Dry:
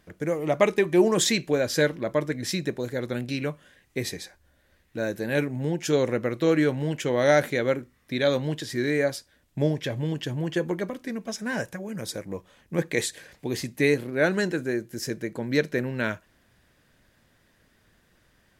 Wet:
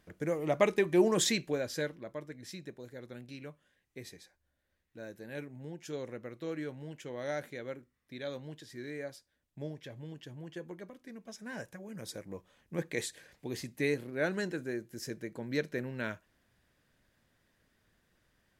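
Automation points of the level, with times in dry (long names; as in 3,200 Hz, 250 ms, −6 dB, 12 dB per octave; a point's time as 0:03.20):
0:01.27 −6 dB
0:02.17 −17 dB
0:10.89 −17 dB
0:12.11 −9.5 dB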